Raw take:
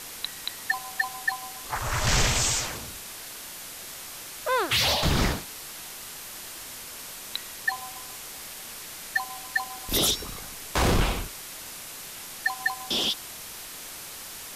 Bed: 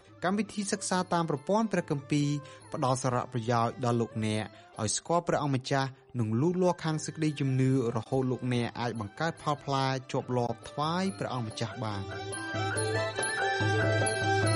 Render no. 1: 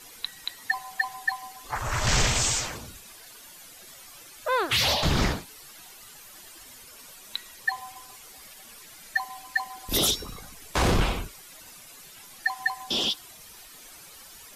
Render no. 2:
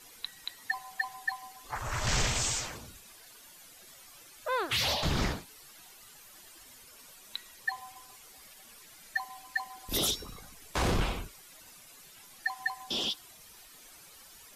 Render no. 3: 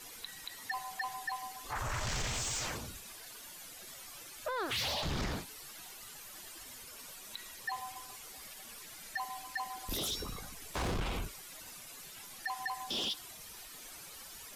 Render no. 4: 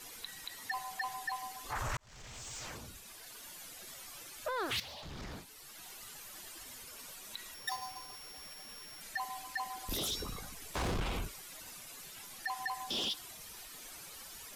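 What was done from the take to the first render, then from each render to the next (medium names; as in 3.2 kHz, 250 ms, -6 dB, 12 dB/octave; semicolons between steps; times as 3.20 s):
noise reduction 12 dB, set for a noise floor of -41 dBFS
trim -6 dB
peak limiter -29.5 dBFS, peak gain reduction 11 dB; waveshaping leveller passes 1
1.97–3.50 s: fade in; 4.80–5.93 s: fade in quadratic, from -13 dB; 7.54–9.01 s: sorted samples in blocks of 8 samples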